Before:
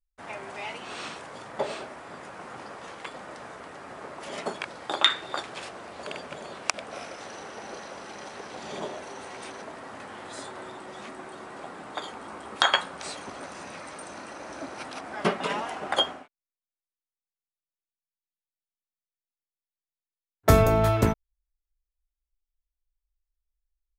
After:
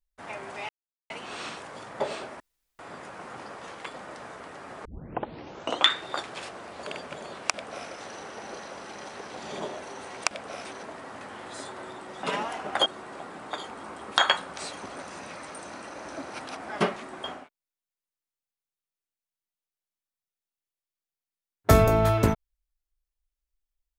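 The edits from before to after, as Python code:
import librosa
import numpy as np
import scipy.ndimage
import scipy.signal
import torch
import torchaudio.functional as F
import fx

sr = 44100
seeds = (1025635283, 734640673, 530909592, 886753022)

y = fx.edit(x, sr, fx.insert_silence(at_s=0.69, length_s=0.41),
    fx.insert_room_tone(at_s=1.99, length_s=0.39),
    fx.tape_start(start_s=4.05, length_s=1.04),
    fx.duplicate(start_s=6.67, length_s=0.41, to_s=9.44),
    fx.swap(start_s=11.02, length_s=0.28, other_s=15.4, other_length_s=0.63), tone=tone)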